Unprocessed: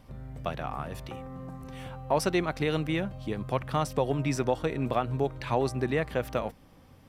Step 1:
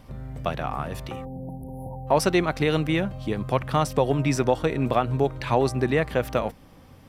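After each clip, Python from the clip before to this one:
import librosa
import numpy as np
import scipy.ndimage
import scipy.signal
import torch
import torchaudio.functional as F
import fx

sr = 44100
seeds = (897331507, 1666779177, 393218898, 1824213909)

y = fx.spec_erase(x, sr, start_s=1.25, length_s=0.82, low_hz=980.0, high_hz=9400.0)
y = F.gain(torch.from_numpy(y), 5.5).numpy()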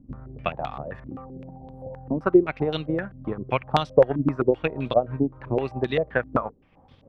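y = fx.transient(x, sr, attack_db=7, sustain_db=-5)
y = fx.filter_held_lowpass(y, sr, hz=7.7, low_hz=270.0, high_hz=3600.0)
y = F.gain(torch.from_numpy(y), -7.0).numpy()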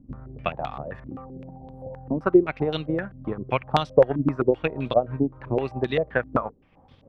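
y = x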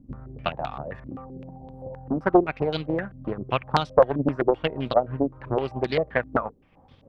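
y = fx.doppler_dist(x, sr, depth_ms=0.61)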